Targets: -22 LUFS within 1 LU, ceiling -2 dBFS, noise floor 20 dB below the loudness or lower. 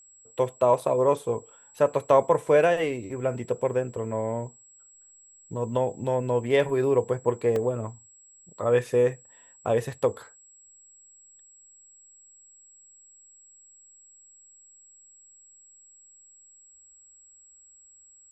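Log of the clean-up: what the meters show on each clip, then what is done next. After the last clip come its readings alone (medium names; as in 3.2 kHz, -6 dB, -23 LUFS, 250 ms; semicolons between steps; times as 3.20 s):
dropouts 1; longest dropout 2.1 ms; steady tone 7.7 kHz; tone level -52 dBFS; loudness -25.5 LUFS; peak level -7.0 dBFS; loudness target -22.0 LUFS
-> interpolate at 7.56 s, 2.1 ms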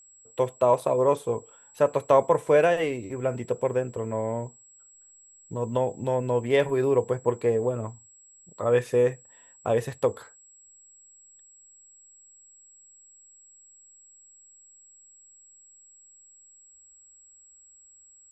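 dropouts 0; steady tone 7.7 kHz; tone level -52 dBFS
-> band-stop 7.7 kHz, Q 30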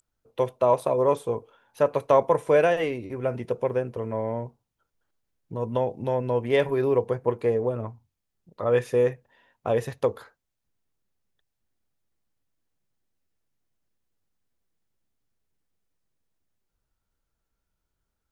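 steady tone not found; loudness -25.5 LUFS; peak level -7.0 dBFS; loudness target -22.0 LUFS
-> trim +3.5 dB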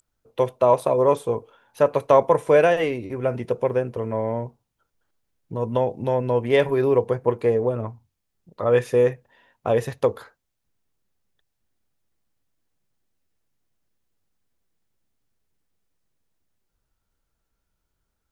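loudness -22.0 LUFS; peak level -3.5 dBFS; noise floor -78 dBFS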